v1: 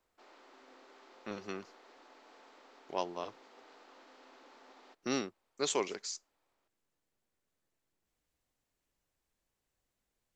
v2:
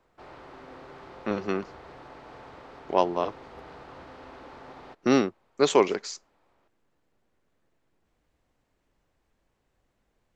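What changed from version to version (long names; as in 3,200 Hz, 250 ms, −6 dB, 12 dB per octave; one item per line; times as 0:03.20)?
background: remove linear-phase brick-wall band-pass 210–7,900 Hz
master: remove first-order pre-emphasis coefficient 0.8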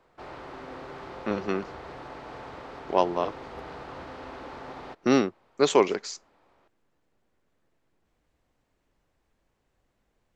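background +5.0 dB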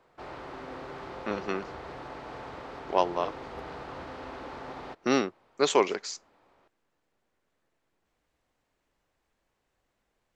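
speech: add low-shelf EQ 390 Hz −7.5 dB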